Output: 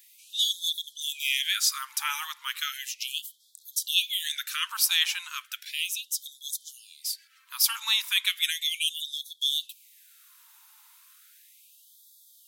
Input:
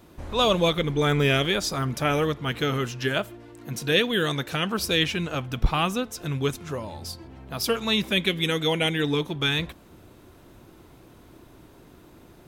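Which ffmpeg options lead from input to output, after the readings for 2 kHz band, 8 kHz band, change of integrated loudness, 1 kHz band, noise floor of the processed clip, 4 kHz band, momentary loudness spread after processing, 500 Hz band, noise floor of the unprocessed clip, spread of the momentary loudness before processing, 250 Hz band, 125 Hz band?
−4.5 dB, +7.0 dB, −2.5 dB, −11.0 dB, −60 dBFS, +1.5 dB, 12 LU, below −40 dB, −52 dBFS, 13 LU, below −40 dB, below −40 dB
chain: -af "crystalizer=i=4.5:c=0,afftfilt=real='re*gte(b*sr/1024,780*pow(3300/780,0.5+0.5*sin(2*PI*0.35*pts/sr)))':imag='im*gte(b*sr/1024,780*pow(3300/780,0.5+0.5*sin(2*PI*0.35*pts/sr)))':win_size=1024:overlap=0.75,volume=-7dB"

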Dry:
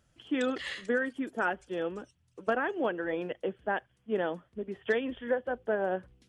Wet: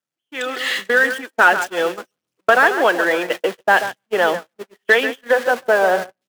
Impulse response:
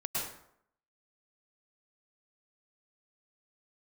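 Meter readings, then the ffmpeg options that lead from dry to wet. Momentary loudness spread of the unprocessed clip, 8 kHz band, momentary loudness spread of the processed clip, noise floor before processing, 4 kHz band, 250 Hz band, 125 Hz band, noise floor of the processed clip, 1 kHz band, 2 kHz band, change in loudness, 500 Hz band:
7 LU, can't be measured, 10 LU, −71 dBFS, +18.5 dB, +5.0 dB, +4.0 dB, −83 dBFS, +17.5 dB, +19.0 dB, +15.5 dB, +13.0 dB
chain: -filter_complex "[0:a]aeval=exprs='val(0)+0.5*0.00841*sgn(val(0))':channel_layout=same,highpass=frequency=160:width=0.5412,highpass=frequency=160:width=1.3066,acrossover=split=470|2600[link_01][link_02][link_03];[link_01]acompressor=threshold=-46dB:ratio=6[link_04];[link_02]aemphasis=mode=production:type=50fm[link_05];[link_04][link_05][link_03]amix=inputs=3:normalize=0,asplit=2[link_06][link_07];[link_07]adelay=141,lowpass=frequency=3500:poles=1,volume=-10dB,asplit=2[link_08][link_09];[link_09]adelay=141,lowpass=frequency=3500:poles=1,volume=0.36,asplit=2[link_10][link_11];[link_11]adelay=141,lowpass=frequency=3500:poles=1,volume=0.36,asplit=2[link_12][link_13];[link_13]adelay=141,lowpass=frequency=3500:poles=1,volume=0.36[link_14];[link_06][link_08][link_10][link_12][link_14]amix=inputs=5:normalize=0,asplit=2[link_15][link_16];[link_16]asoftclip=type=tanh:threshold=-25.5dB,volume=-7dB[link_17];[link_15][link_17]amix=inputs=2:normalize=0,agate=range=-48dB:threshold=-34dB:ratio=16:detection=peak,dynaudnorm=framelen=170:gausssize=9:maxgain=11dB,equalizer=frequency=240:width=0.34:gain=-4,volume=5.5dB"

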